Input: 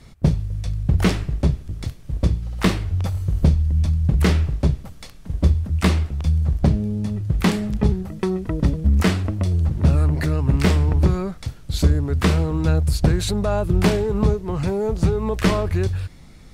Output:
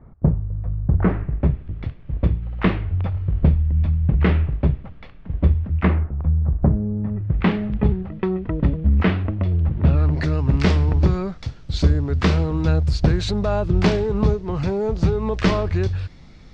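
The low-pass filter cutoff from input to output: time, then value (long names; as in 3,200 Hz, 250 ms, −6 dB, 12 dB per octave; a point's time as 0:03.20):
low-pass filter 24 dB per octave
0:00.81 1,300 Hz
0:01.67 2,800 Hz
0:05.74 2,800 Hz
0:06.15 1,400 Hz
0:06.90 1,400 Hz
0:07.46 3,000 Hz
0:09.79 3,000 Hz
0:10.23 5,800 Hz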